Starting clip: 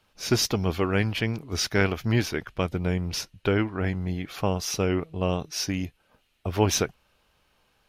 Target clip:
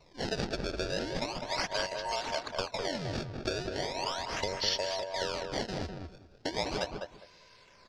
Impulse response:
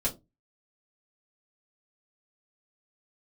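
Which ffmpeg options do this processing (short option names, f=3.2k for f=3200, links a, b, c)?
-filter_complex "[0:a]afftfilt=real='real(if(between(b,1,1008),(2*floor((b-1)/48)+1)*48-b,b),0)':imag='imag(if(between(b,1,1008),(2*floor((b-1)/48)+1)*48-b,b),0)*if(between(b,1,1008),-1,1)':win_size=2048:overlap=0.75,equalizer=f=850:t=o:w=0.24:g=-12,bandreject=f=1.4k:w=14,aecho=1:1:1.9:0.52,acompressor=threshold=-39dB:ratio=5,acrusher=samples=25:mix=1:aa=0.000001:lfo=1:lforange=40:lforate=0.37,lowpass=f=5k:t=q:w=3.6,asplit=2[a][b];[b]adelay=202,lowpass=f=1.5k:p=1,volume=-3.5dB,asplit=2[c][d];[d]adelay=202,lowpass=f=1.5k:p=1,volume=0.21,asplit=2[e][f];[f]adelay=202,lowpass=f=1.5k:p=1,volume=0.21[g];[a][c][e][g]amix=inputs=4:normalize=0,volume=5dB"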